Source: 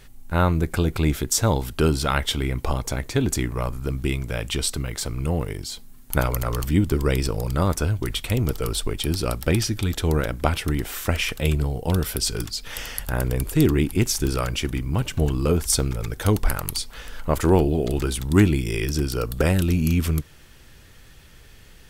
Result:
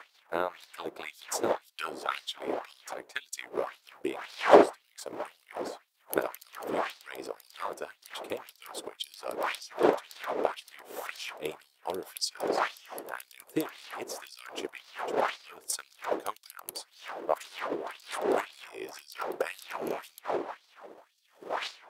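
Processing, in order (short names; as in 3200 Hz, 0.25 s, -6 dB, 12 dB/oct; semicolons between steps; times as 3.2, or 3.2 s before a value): wind noise 610 Hz -19 dBFS; transient shaper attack +10 dB, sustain -7 dB; LFO high-pass sine 1.9 Hz 370–4600 Hz; gain -16.5 dB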